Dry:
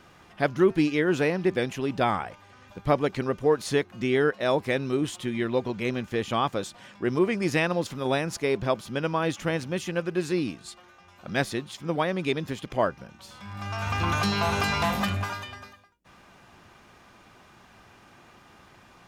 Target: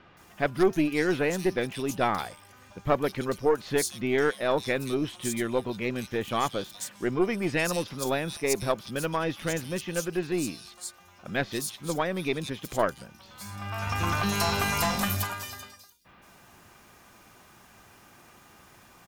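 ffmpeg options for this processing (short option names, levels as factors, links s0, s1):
-filter_complex "[0:a]aeval=exprs='0.376*(cos(1*acos(clip(val(0)/0.376,-1,1)))-cos(1*PI/2))+0.119*(cos(2*acos(clip(val(0)/0.376,-1,1)))-cos(2*PI/2))':c=same,aemphasis=mode=production:type=50fm,acrossover=split=3700[s0][s1];[s1]adelay=170[s2];[s0][s2]amix=inputs=2:normalize=0,volume=0.841"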